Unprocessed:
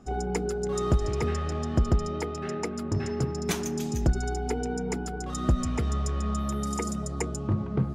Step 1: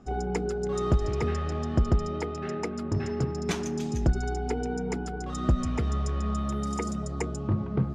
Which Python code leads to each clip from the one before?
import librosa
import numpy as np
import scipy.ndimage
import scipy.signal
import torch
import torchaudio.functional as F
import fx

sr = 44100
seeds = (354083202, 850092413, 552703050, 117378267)

y = fx.air_absorb(x, sr, metres=62.0)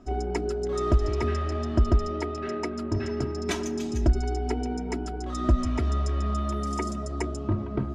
y = x + 0.73 * np.pad(x, (int(3.1 * sr / 1000.0), 0))[:len(x)]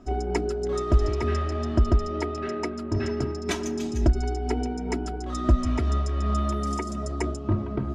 y = fx.am_noise(x, sr, seeds[0], hz=5.7, depth_pct=55)
y = F.gain(torch.from_numpy(y), 3.5).numpy()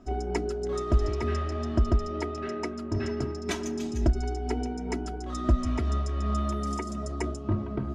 y = fx.comb_fb(x, sr, f0_hz=220.0, decay_s=0.19, harmonics='odd', damping=0.0, mix_pct=40)
y = F.gain(torch.from_numpy(y), 1.0).numpy()